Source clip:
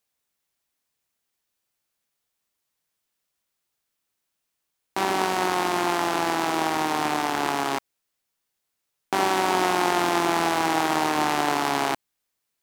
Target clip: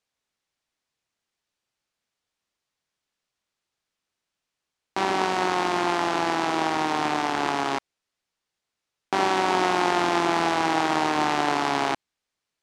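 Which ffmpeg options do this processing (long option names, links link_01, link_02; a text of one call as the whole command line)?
ffmpeg -i in.wav -af "lowpass=6300" out.wav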